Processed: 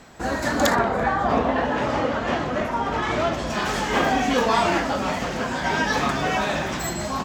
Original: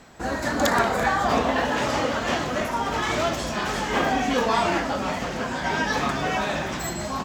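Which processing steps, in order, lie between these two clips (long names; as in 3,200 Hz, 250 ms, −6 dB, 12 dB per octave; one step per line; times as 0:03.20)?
0:00.74–0:03.49: low-pass filter 1,200 Hz → 2,500 Hz 6 dB per octave
level +2 dB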